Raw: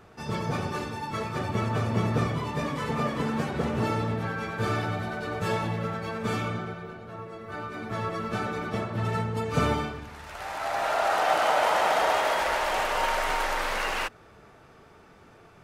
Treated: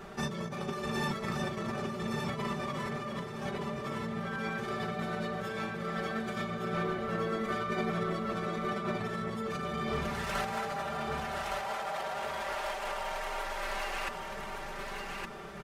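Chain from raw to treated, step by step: comb 5.1 ms, depth 91%; peak limiter -23.5 dBFS, peak gain reduction 15.5 dB; compressor with a negative ratio -35 dBFS, ratio -0.5; feedback delay 1165 ms, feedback 25%, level -4 dB

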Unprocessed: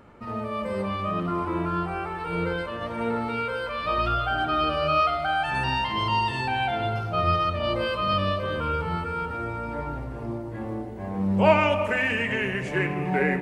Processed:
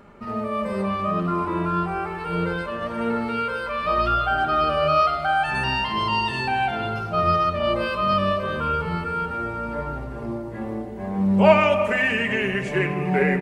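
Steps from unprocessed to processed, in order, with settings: comb 5 ms, depth 43%; trim +2 dB

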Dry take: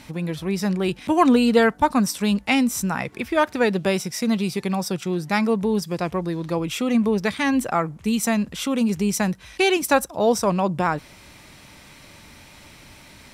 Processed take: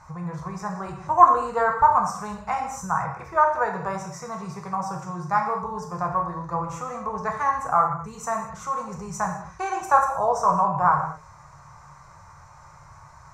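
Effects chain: FFT filter 160 Hz 0 dB, 230 Hz -27 dB, 1.1 kHz +10 dB, 3.2 kHz -28 dB, 6.7 kHz -3 dB, 9.8 kHz -22 dB; gated-style reverb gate 260 ms falling, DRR 1 dB; dynamic bell 5 kHz, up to -5 dB, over -50 dBFS, Q 2.5; trim -2 dB

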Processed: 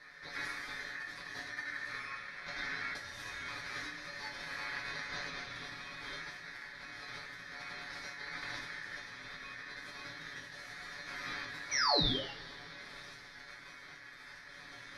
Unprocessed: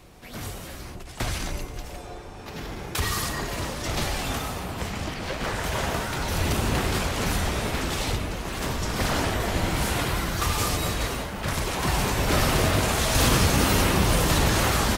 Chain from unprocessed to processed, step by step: Bessel low-pass 5.7 kHz, order 8; peaking EQ 130 Hz -3 dB 1.8 oct; compressor with a negative ratio -35 dBFS, ratio -1; flange 0.22 Hz, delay 8.8 ms, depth 7.1 ms, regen -47%; painted sound fall, 11.71–12.31 s, 930–4200 Hz -25 dBFS; static phaser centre 2.5 kHz, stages 4; feedback comb 140 Hz, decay 0.21 s, harmonics all, mix 90%; ring modulator 1.8 kHz; two-slope reverb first 0.5 s, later 4.9 s, from -21 dB, DRR 4.5 dB; trim +6.5 dB

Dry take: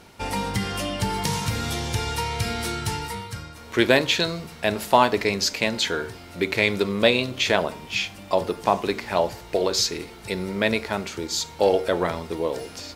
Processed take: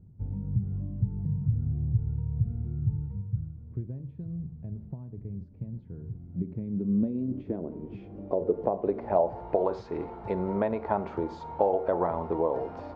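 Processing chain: compression 6:1, threshold -25 dBFS, peak gain reduction 13 dB; low-pass sweep 130 Hz -> 870 Hz, 5.92–9.63 s

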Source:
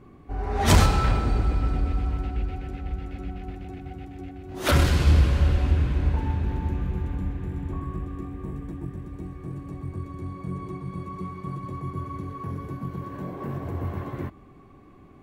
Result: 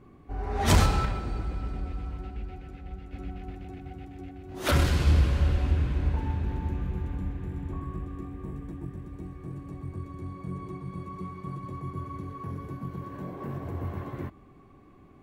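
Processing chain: 1.05–3.13 s: flange 1.5 Hz, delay 4.8 ms, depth 1.4 ms, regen +70%; trim -3.5 dB

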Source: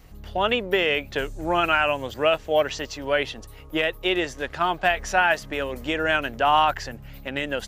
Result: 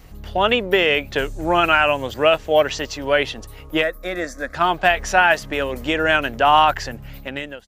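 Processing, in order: fade out at the end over 0.55 s; 3.83–4.55 s: static phaser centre 590 Hz, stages 8; trim +5 dB

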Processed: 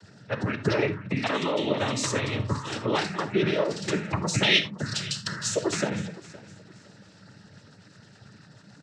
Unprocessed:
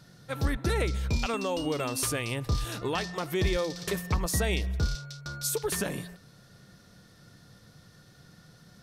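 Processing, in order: spectral gate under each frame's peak -25 dB strong; 4.42–5.27 s: resonant high shelf 2 kHz +10.5 dB, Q 1.5; noise-vocoded speech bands 12; feedback delay 515 ms, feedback 28%, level -19 dB; gated-style reverb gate 100 ms flat, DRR 10.5 dB; trim +4.5 dB

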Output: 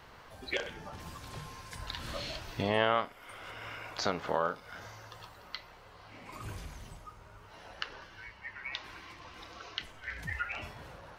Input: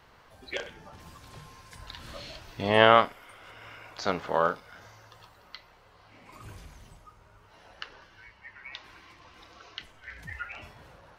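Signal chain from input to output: compression 2.5:1, threshold -34 dBFS, peak gain reduction 14.5 dB; trim +3.5 dB

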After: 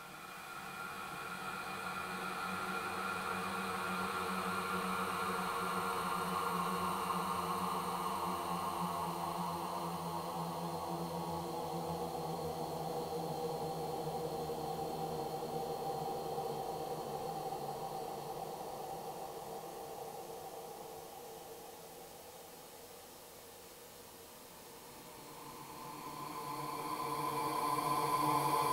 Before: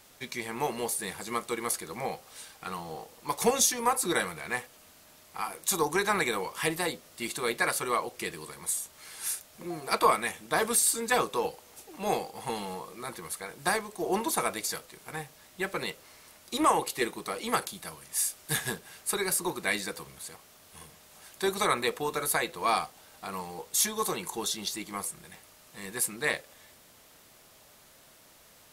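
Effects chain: fade-in on the opening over 7.81 s; Paulstretch 42×, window 0.25 s, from 2.59 s; two-band feedback delay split 1.1 kHz, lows 554 ms, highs 277 ms, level -4 dB; trim +6 dB

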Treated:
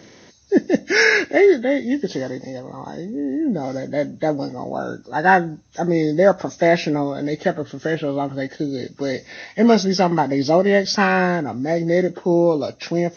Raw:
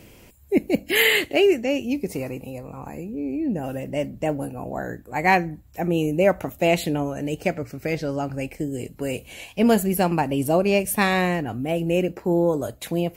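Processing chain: knee-point frequency compression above 1.1 kHz 1.5:1; high-pass 160 Hz 12 dB/octave; trim +4.5 dB

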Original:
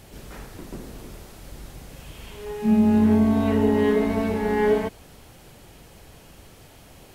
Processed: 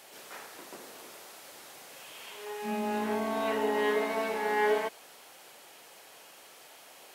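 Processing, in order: high-pass 620 Hz 12 dB/octave

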